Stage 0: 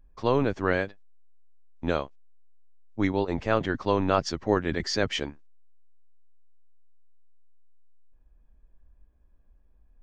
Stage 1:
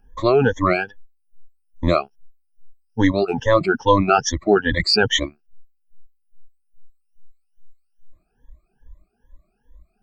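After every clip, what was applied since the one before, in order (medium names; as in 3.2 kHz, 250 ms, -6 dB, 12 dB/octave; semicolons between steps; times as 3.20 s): drifting ripple filter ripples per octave 1.1, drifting +2.4 Hz, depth 22 dB; reverb removal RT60 1.8 s; in parallel at 0 dB: peak limiter -13 dBFS, peak gain reduction 8.5 dB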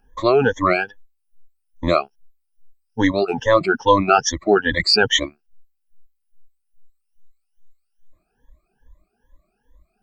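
bass shelf 220 Hz -8 dB; trim +2 dB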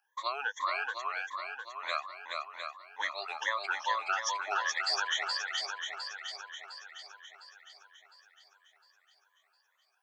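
high-pass 910 Hz 24 dB/octave; compression, threshold -23 dBFS, peak gain reduction 12 dB; on a send: shuffle delay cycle 707 ms, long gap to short 1.5:1, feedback 47%, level -3.5 dB; on the sum: trim -6.5 dB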